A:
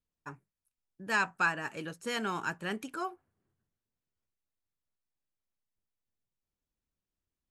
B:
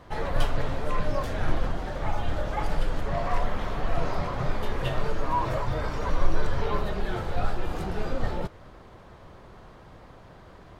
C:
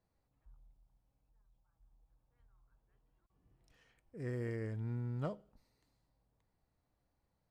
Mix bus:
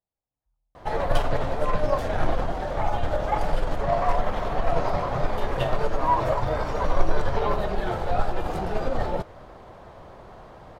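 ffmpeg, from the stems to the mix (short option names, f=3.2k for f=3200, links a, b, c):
-filter_complex "[1:a]aeval=exprs='0.422*(cos(1*acos(clip(val(0)/0.422,-1,1)))-cos(1*PI/2))+0.0596*(cos(2*acos(clip(val(0)/0.422,-1,1)))-cos(2*PI/2))+0.0266*(cos(4*acos(clip(val(0)/0.422,-1,1)))-cos(4*PI/2))+0.0237*(cos(6*acos(clip(val(0)/0.422,-1,1)))-cos(6*PI/2))':c=same,adelay=750,volume=0.5dB[a];[2:a]volume=-15dB[b];[a][b]amix=inputs=2:normalize=0,equalizer=f=690:t=o:w=1.2:g=7.5"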